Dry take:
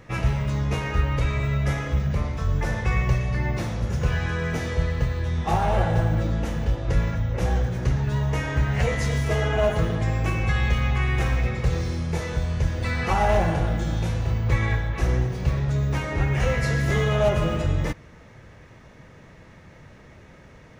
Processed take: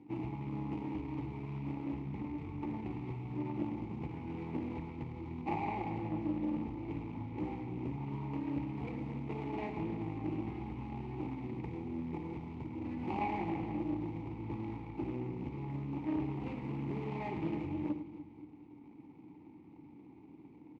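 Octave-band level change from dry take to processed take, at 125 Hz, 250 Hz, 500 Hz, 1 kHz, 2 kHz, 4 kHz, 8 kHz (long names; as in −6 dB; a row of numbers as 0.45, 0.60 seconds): −19.0 dB, −6.5 dB, −16.5 dB, −13.0 dB, −22.5 dB, below −20 dB, can't be measured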